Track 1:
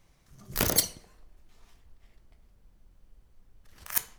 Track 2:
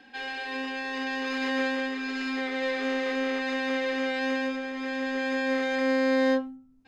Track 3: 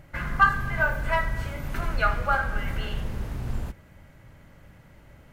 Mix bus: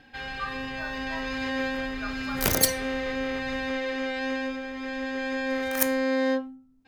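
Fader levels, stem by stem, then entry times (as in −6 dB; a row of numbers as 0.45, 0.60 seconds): +2.0, −1.5, −15.0 decibels; 1.85, 0.00, 0.00 seconds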